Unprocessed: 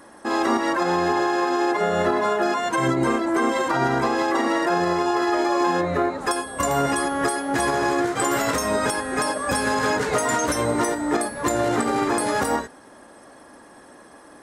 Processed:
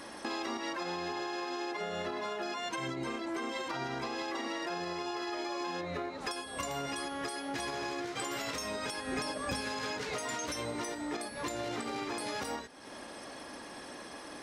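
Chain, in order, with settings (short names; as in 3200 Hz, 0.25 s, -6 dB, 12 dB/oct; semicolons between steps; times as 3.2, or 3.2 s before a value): band shelf 3600 Hz +9 dB; compressor 4:1, threshold -38 dBFS, peak gain reduction 17.5 dB; 9.07–9.61 low shelf 330 Hz +8 dB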